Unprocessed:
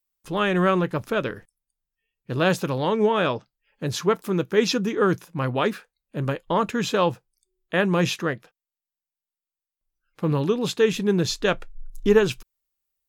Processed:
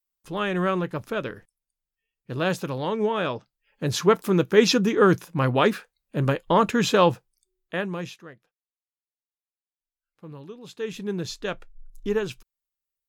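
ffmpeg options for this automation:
ffmpeg -i in.wav -af "volume=13.5dB,afade=type=in:start_time=3.3:duration=0.84:silence=0.446684,afade=type=out:start_time=7.11:duration=0.74:silence=0.281838,afade=type=out:start_time=7.85:duration=0.34:silence=0.298538,afade=type=in:start_time=10.64:duration=0.4:silence=0.298538" out.wav

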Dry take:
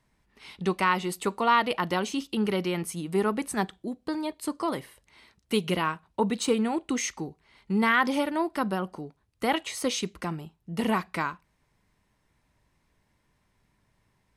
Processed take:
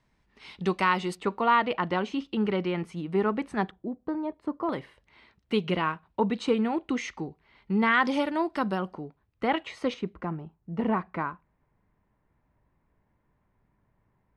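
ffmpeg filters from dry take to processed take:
ffmpeg -i in.wav -af "asetnsamples=nb_out_samples=441:pad=0,asendcmd='1.15 lowpass f 2700;3.71 lowpass f 1200;4.69 lowpass f 3200;7.92 lowpass f 5600;8.93 lowpass f 2600;9.94 lowpass f 1400',lowpass=6100" out.wav

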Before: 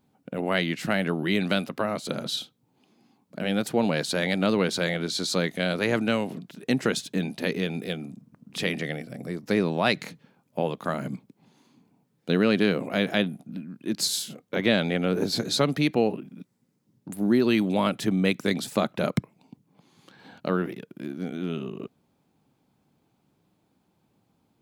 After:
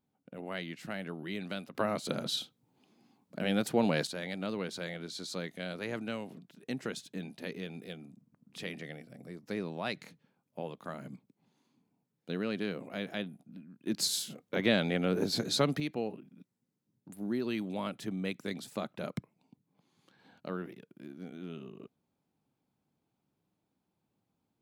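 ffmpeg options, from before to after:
ffmpeg -i in.wav -af "asetnsamples=nb_out_samples=441:pad=0,asendcmd='1.75 volume volume -4dB;4.07 volume volume -13dB;13.87 volume volume -5dB;15.8 volume volume -12.5dB',volume=-14dB" out.wav

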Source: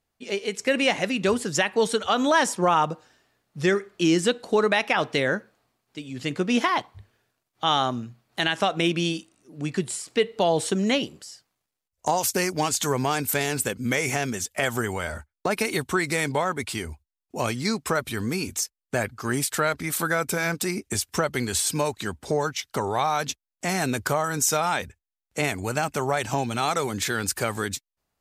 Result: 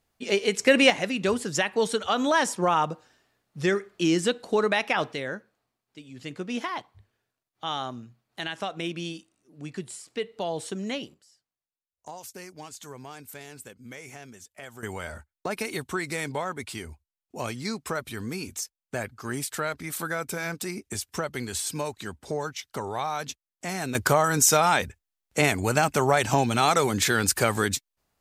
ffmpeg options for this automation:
ffmpeg -i in.wav -af "asetnsamples=nb_out_samples=441:pad=0,asendcmd='0.9 volume volume -2.5dB;5.13 volume volume -9dB;11.14 volume volume -18dB;14.83 volume volume -6dB;23.95 volume volume 3.5dB',volume=4dB" out.wav

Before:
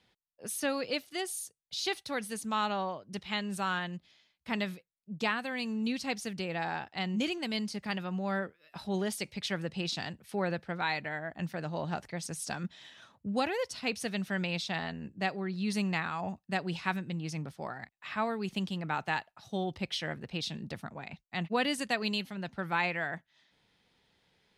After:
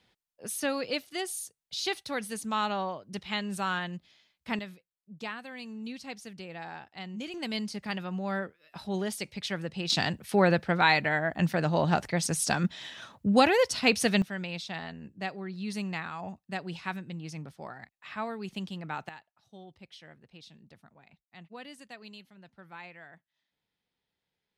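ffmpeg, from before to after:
ffmpeg -i in.wav -af "asetnsamples=nb_out_samples=441:pad=0,asendcmd='4.59 volume volume -7dB;7.34 volume volume 0.5dB;9.9 volume volume 9.5dB;14.22 volume volume -3dB;19.09 volume volume -15.5dB',volume=1.5dB" out.wav

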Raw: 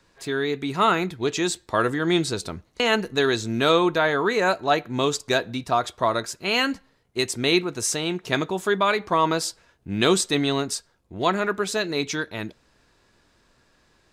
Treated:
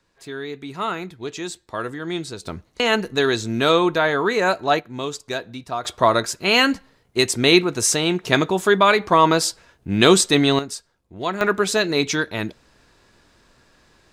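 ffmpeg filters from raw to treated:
ffmpeg -i in.wav -af "asetnsamples=nb_out_samples=441:pad=0,asendcmd='2.47 volume volume 2dB;4.8 volume volume -5dB;5.85 volume volume 6dB;10.59 volume volume -3dB;11.41 volume volume 5.5dB',volume=-6dB" out.wav

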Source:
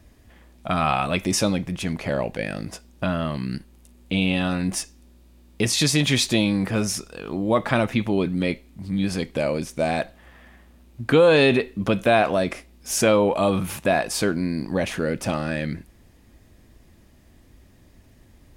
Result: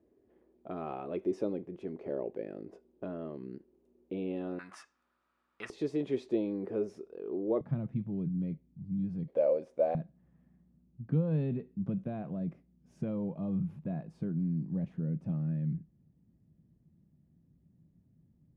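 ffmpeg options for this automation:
ffmpeg -i in.wav -af "asetnsamples=nb_out_samples=441:pad=0,asendcmd='4.59 bandpass f 1300;5.7 bandpass f 400;7.61 bandpass f 150;9.28 bandpass f 540;9.95 bandpass f 160',bandpass=frequency=390:width_type=q:width=5:csg=0" out.wav

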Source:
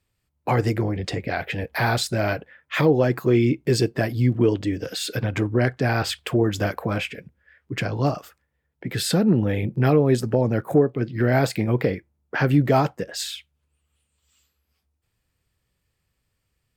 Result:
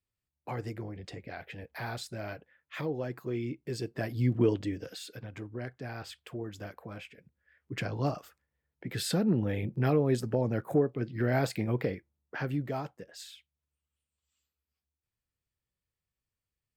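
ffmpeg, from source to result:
ffmpeg -i in.wav -af "volume=4dB,afade=type=in:start_time=3.8:duration=0.61:silence=0.316228,afade=type=out:start_time=4.41:duration=0.71:silence=0.237137,afade=type=in:start_time=7.17:duration=0.57:silence=0.316228,afade=type=out:start_time=11.69:duration=1.09:silence=0.375837" out.wav

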